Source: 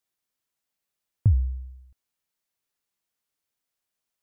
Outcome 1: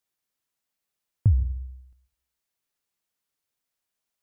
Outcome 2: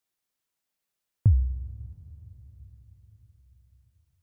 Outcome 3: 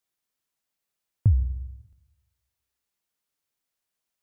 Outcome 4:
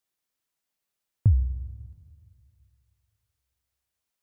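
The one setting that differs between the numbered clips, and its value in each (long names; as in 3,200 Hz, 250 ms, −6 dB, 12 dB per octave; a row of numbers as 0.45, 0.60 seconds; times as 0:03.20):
dense smooth reverb, RT60: 0.53, 5.3, 1.1, 2.3 seconds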